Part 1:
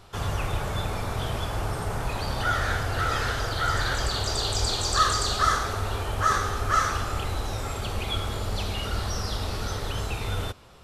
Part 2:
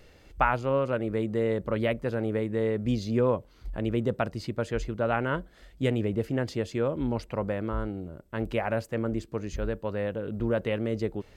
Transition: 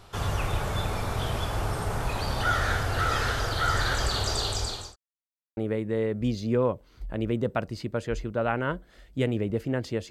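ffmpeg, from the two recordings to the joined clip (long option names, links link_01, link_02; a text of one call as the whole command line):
ffmpeg -i cue0.wav -i cue1.wav -filter_complex "[0:a]apad=whole_dur=10.1,atrim=end=10.1,asplit=2[link_01][link_02];[link_01]atrim=end=4.96,asetpts=PTS-STARTPTS,afade=type=out:start_time=4.14:duration=0.82:curve=qsin[link_03];[link_02]atrim=start=4.96:end=5.57,asetpts=PTS-STARTPTS,volume=0[link_04];[1:a]atrim=start=2.21:end=6.74,asetpts=PTS-STARTPTS,afade=type=in:duration=0.004:curve=hsin[link_05];[link_03][link_04][link_05]concat=n=3:v=0:a=1" out.wav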